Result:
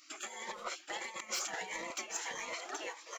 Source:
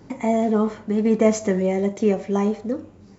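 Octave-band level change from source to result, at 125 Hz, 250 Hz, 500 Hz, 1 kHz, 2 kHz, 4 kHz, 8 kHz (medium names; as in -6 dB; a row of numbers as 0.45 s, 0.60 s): -38.5 dB, -35.0 dB, -26.5 dB, -12.5 dB, -3.0 dB, +2.0 dB, no reading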